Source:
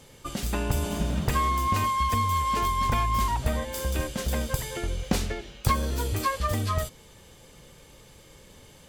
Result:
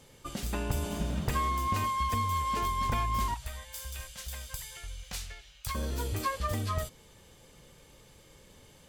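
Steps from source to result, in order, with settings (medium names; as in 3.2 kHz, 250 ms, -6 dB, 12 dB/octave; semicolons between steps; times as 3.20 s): 3.34–5.75 s: amplifier tone stack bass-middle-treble 10-0-10; trim -5 dB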